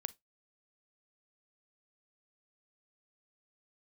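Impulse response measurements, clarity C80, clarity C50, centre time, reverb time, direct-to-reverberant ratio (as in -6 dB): 35.0 dB, 22.5 dB, 2 ms, 0.15 s, 17.0 dB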